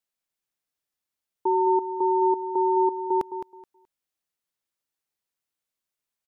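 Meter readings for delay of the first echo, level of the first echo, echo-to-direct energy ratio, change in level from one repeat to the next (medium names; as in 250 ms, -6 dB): 213 ms, -10.0 dB, -10.0 dB, -14.0 dB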